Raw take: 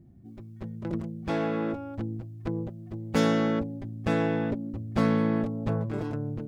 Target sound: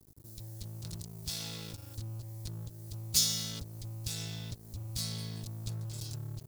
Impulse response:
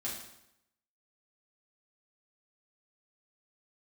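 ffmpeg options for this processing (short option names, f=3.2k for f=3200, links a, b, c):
-af "firequalizer=gain_entry='entry(110,0);entry(250,-30);entry(1600,-29);entry(4200,-1)':delay=0.05:min_phase=1,acompressor=threshold=-49dB:ratio=2.5,lowshelf=f=180:g=-8,acontrast=70,aeval=exprs='sgn(val(0))*max(abs(val(0))-0.0015,0)':c=same,crystalizer=i=5:c=0,volume=7dB"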